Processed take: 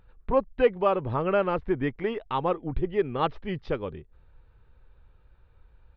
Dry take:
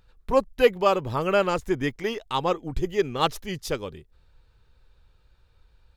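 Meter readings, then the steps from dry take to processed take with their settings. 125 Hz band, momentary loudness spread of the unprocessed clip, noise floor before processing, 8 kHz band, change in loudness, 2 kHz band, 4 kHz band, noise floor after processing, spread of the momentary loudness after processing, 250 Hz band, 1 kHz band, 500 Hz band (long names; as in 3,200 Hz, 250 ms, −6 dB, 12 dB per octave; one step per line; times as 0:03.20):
0.0 dB, 11 LU, −61 dBFS, below −30 dB, −2.5 dB, −5.0 dB, −10.5 dB, −59 dBFS, 9 LU, −1.0 dB, −2.5 dB, −2.0 dB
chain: in parallel at +2 dB: downward compressor, threshold −29 dBFS, peak gain reduction 16 dB
on the sum: Gaussian smoothing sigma 3.2 samples
level −4.5 dB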